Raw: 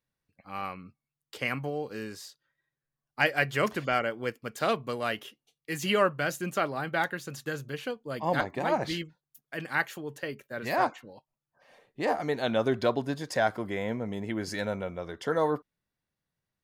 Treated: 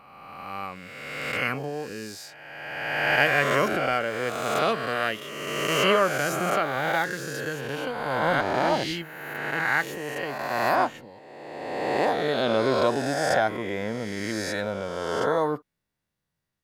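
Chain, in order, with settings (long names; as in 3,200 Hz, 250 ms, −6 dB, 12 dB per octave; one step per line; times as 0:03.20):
peak hold with a rise ahead of every peak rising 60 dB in 1.84 s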